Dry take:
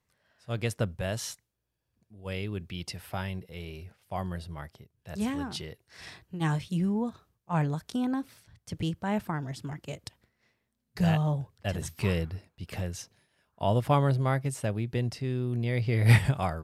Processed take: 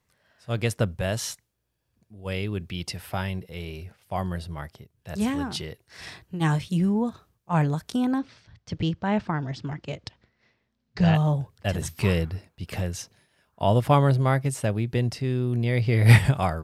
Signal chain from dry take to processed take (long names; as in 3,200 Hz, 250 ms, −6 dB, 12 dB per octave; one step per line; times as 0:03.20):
0:08.18–0:11.15: low-pass filter 5,600 Hz 24 dB per octave
level +5 dB